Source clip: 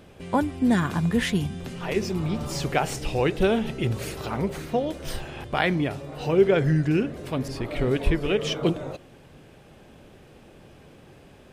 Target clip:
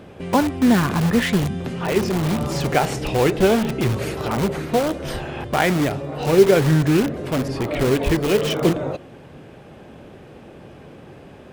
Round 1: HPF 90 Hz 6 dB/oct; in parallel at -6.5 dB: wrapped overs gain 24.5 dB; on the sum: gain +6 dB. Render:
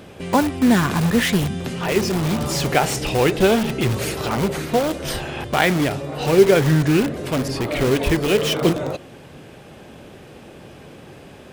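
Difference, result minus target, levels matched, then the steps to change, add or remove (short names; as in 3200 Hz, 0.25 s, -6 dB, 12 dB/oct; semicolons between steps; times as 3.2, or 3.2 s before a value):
8000 Hz band +3.5 dB
add after HPF: high shelf 2900 Hz -10 dB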